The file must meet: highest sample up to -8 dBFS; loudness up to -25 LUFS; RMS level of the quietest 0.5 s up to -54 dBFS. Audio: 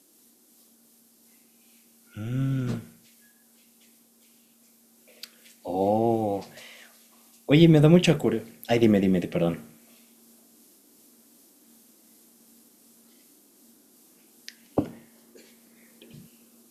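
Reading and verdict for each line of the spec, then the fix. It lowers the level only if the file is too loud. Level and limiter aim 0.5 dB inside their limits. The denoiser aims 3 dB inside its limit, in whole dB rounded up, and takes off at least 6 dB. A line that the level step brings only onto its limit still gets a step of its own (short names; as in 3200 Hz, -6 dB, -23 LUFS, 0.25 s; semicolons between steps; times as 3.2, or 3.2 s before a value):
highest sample -4.5 dBFS: fail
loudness -23.5 LUFS: fail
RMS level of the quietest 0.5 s -60 dBFS: OK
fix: gain -2 dB; limiter -8.5 dBFS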